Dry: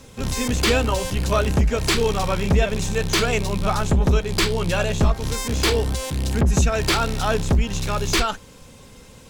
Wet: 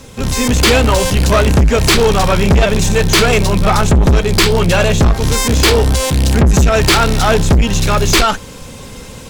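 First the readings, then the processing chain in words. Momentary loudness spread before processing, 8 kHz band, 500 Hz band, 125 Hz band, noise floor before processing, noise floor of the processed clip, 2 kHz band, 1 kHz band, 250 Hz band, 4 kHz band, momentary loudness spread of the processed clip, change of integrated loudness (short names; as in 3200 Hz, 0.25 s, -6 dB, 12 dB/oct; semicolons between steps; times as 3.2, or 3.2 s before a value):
6 LU, +10.0 dB, +9.5 dB, +9.5 dB, -46 dBFS, -32 dBFS, +9.5 dB, +9.5 dB, +9.5 dB, +9.5 dB, 4 LU, +9.5 dB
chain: AGC gain up to 5.5 dB; soft clip -14.5 dBFS, distortion -11 dB; gain +8.5 dB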